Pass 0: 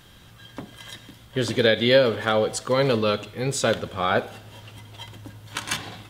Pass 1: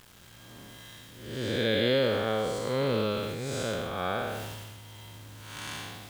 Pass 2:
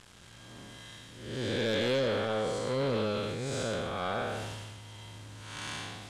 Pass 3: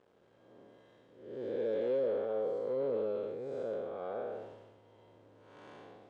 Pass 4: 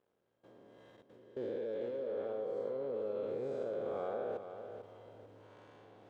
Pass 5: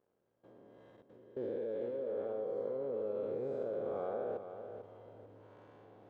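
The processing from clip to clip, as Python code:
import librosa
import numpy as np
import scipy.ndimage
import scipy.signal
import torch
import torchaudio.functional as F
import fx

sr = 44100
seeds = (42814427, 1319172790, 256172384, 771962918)

y1 = fx.spec_blur(x, sr, span_ms=252.0)
y1 = fx.quant_dither(y1, sr, seeds[0], bits=8, dither='none')
y1 = fx.sustainer(y1, sr, db_per_s=27.0)
y1 = y1 * 10.0 ** (-4.0 / 20.0)
y2 = scipy.signal.sosfilt(scipy.signal.butter(4, 9800.0, 'lowpass', fs=sr, output='sos'), y1)
y2 = 10.0 ** (-24.0 / 20.0) * np.tanh(y2 / 10.0 ** (-24.0 / 20.0))
y3 = fx.bandpass_q(y2, sr, hz=470.0, q=2.4)
y4 = fx.level_steps(y3, sr, step_db=21)
y4 = fx.echo_feedback(y4, sr, ms=445, feedback_pct=31, wet_db=-9)
y4 = y4 * 10.0 ** (3.5 / 20.0)
y5 = fx.high_shelf(y4, sr, hz=2100.0, db=-11.0)
y5 = y5 * 10.0 ** (1.0 / 20.0)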